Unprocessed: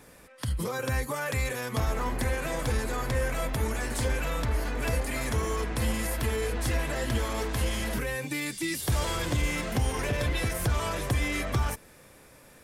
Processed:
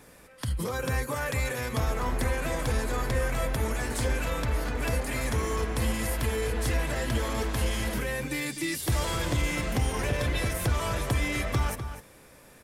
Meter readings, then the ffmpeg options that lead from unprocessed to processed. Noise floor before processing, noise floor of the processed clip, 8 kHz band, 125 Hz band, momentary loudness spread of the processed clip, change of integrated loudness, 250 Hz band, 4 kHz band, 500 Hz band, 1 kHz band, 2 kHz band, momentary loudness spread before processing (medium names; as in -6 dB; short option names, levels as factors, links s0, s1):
-54 dBFS, -53 dBFS, 0.0 dB, +0.5 dB, 3 LU, +0.5 dB, +0.5 dB, +0.5 dB, +0.5 dB, +0.5 dB, +0.5 dB, 2 LU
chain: -filter_complex "[0:a]asplit=2[s0][s1];[s1]adelay=250.7,volume=0.355,highshelf=f=4000:g=-5.64[s2];[s0][s2]amix=inputs=2:normalize=0"